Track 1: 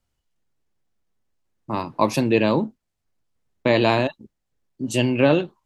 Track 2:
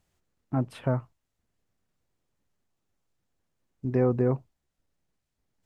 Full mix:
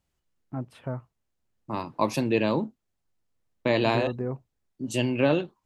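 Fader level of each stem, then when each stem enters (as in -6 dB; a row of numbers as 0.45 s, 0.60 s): -5.5 dB, -6.5 dB; 0.00 s, 0.00 s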